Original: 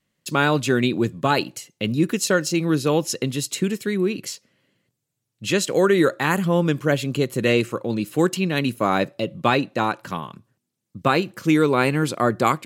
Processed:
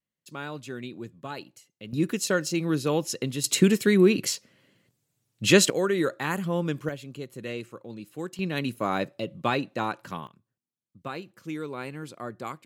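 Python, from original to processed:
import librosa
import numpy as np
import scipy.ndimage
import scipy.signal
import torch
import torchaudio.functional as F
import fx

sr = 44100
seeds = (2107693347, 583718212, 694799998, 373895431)

y = fx.gain(x, sr, db=fx.steps((0.0, -17.5), (1.93, -5.5), (3.44, 3.5), (5.7, -8.0), (6.89, -16.0), (8.39, -7.0), (10.27, -17.0)))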